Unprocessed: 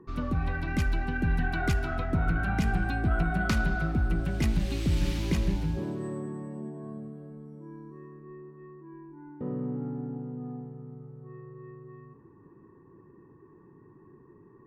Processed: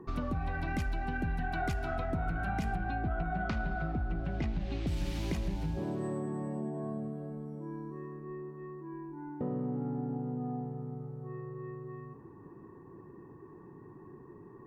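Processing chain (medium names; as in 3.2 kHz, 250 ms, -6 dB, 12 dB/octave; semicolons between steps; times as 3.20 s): peaking EQ 720 Hz +7.5 dB 0.5 oct; compression 4:1, threshold -35 dBFS, peak gain reduction 12.5 dB; 2.76–4.87 s: distance through air 170 m; trim +3 dB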